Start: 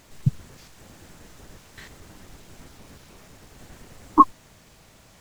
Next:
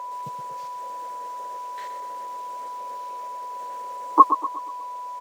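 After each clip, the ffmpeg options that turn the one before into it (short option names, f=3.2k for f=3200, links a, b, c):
-af "aeval=exprs='val(0)+0.0224*sin(2*PI*990*n/s)':c=same,highpass=f=530:t=q:w=4.9,aecho=1:1:122|244|366|488|610:0.316|0.142|0.064|0.0288|0.013,volume=-1dB"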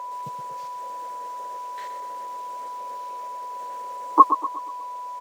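-af anull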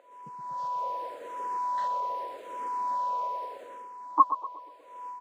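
-filter_complex "[0:a]lowpass=f=2k:p=1,dynaudnorm=f=390:g=3:m=14dB,asplit=2[a][b];[b]afreqshift=-0.83[c];[a][c]amix=inputs=2:normalize=1,volume=-8dB"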